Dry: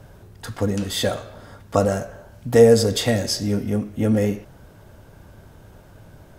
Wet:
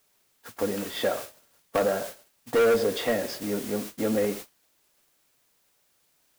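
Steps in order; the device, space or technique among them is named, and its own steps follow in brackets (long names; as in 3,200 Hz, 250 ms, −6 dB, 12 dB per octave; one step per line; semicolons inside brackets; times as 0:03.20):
aircraft radio (band-pass filter 310–2,500 Hz; hard clipping −16.5 dBFS, distortion −7 dB; white noise bed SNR 11 dB; noise gate −34 dBFS, range −28 dB)
level −1.5 dB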